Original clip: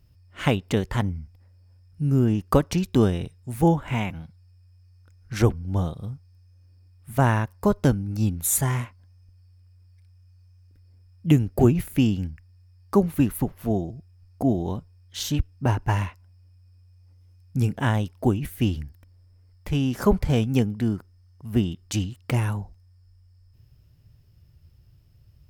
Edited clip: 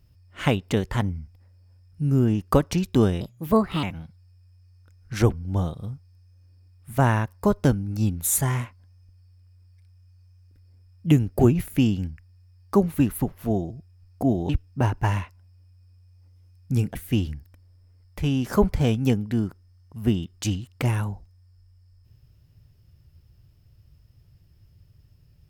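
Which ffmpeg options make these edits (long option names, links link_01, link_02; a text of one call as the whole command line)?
ffmpeg -i in.wav -filter_complex "[0:a]asplit=5[link_01][link_02][link_03][link_04][link_05];[link_01]atrim=end=3.214[link_06];[link_02]atrim=start=3.21:end=4.03,asetpts=PTS-STARTPTS,asetrate=58212,aresample=44100,atrim=end_sample=27395,asetpts=PTS-STARTPTS[link_07];[link_03]atrim=start=4.026:end=14.692[link_08];[link_04]atrim=start=15.338:end=17.802[link_09];[link_05]atrim=start=18.438[link_10];[link_06][link_07]acrossfade=duration=0.004:curve1=hsin:curve2=hsin[link_11];[link_11][link_08]acrossfade=duration=0.004:curve1=hsin:curve2=hsin[link_12];[link_12][link_09]acrossfade=duration=0.004:curve1=hsin:curve2=hsin[link_13];[link_13][link_10]acrossfade=duration=0.004:curve1=hsin:curve2=hsin" out.wav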